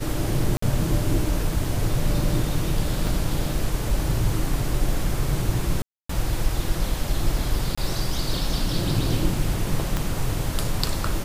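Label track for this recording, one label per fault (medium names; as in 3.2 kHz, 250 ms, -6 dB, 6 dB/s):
0.570000	0.620000	dropout 54 ms
3.070000	3.070000	dropout 2.7 ms
5.820000	6.090000	dropout 274 ms
7.750000	7.780000	dropout 25 ms
9.970000	9.970000	pop -10 dBFS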